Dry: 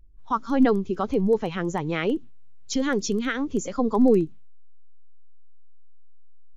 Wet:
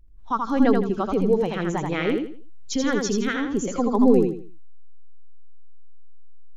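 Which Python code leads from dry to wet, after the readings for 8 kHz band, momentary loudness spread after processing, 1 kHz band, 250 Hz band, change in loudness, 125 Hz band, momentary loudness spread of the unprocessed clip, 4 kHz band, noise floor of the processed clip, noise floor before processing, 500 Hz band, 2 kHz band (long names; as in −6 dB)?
can't be measured, 10 LU, +1.5 dB, +1.5 dB, +1.5 dB, +1.5 dB, 9 LU, +1.5 dB, −34 dBFS, −39 dBFS, +1.5 dB, +1.5 dB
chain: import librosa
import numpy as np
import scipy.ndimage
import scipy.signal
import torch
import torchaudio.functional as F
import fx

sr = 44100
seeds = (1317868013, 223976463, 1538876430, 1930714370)

y = fx.echo_feedback(x, sr, ms=82, feedback_pct=30, wet_db=-4.0)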